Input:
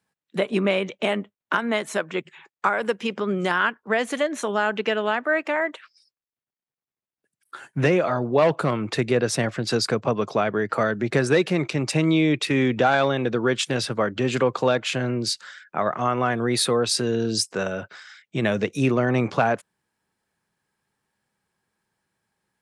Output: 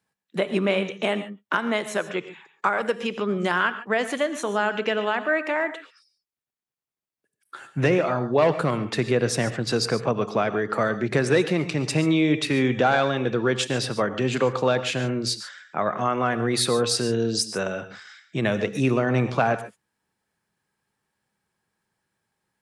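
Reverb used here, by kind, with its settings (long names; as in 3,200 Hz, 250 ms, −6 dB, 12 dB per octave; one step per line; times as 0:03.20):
reverb whose tail is shaped and stops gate 160 ms rising, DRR 11.5 dB
level −1 dB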